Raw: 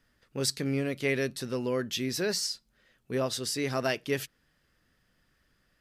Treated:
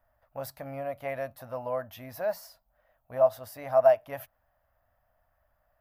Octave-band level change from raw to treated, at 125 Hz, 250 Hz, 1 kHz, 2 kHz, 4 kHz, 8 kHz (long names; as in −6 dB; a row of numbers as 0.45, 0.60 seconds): −9.5 dB, −14.0 dB, +8.0 dB, −8.5 dB, below −15 dB, below −15 dB